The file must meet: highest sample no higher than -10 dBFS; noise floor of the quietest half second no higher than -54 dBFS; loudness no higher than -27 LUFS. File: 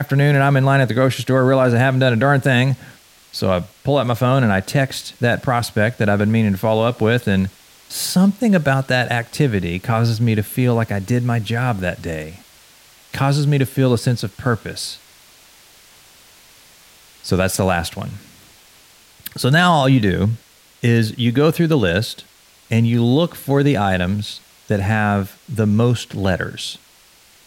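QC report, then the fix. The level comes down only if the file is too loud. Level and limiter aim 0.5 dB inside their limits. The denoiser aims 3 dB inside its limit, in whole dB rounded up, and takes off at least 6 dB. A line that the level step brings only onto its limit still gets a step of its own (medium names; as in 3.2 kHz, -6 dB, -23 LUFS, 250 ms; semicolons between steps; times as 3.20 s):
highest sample -4.5 dBFS: fail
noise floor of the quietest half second -50 dBFS: fail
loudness -18.0 LUFS: fail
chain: trim -9.5 dB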